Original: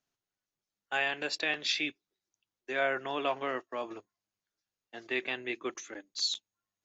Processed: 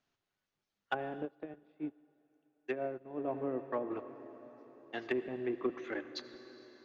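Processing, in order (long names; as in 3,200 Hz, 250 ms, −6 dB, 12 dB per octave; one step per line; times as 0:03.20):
treble cut that deepens with the level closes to 380 Hz, closed at −31.5 dBFS
low-pass filter 4,200 Hz 12 dB per octave
in parallel at −8 dB: soft clipping −35 dBFS, distortion −14 dB
on the sum: convolution reverb RT60 4.6 s, pre-delay 63 ms, DRR 11 dB
0:01.25–0:03.28: expander for the loud parts 2.5 to 1, over −46 dBFS
level +2.5 dB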